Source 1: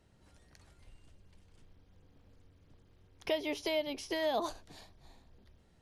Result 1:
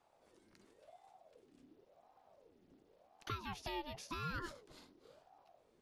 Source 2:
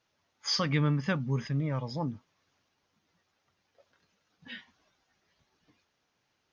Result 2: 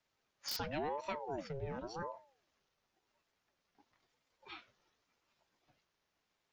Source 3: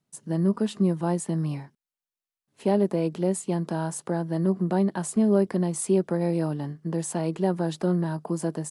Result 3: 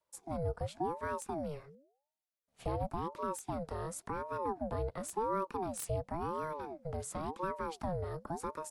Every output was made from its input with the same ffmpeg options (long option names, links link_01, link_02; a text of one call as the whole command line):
ffmpeg -i in.wav -filter_complex "[0:a]acrossover=split=170|950|2600[link_01][link_02][link_03][link_04];[link_04]aeval=exprs='(mod(14.1*val(0)+1,2)-1)/14.1':channel_layout=same[link_05];[link_01][link_02][link_03][link_05]amix=inputs=4:normalize=0,acompressor=threshold=-38dB:ratio=1.5,bandreject=frequency=69.87:width_type=h:width=4,bandreject=frequency=139.74:width_type=h:width=4,aeval=exprs='val(0)*sin(2*PI*520*n/s+520*0.5/0.93*sin(2*PI*0.93*n/s))':channel_layout=same,volume=-3.5dB" out.wav